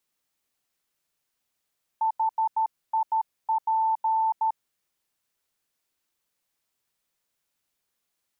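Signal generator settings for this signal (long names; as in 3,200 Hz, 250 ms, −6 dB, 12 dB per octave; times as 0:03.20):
Morse code "HIP" 13 words per minute 887 Hz −20.5 dBFS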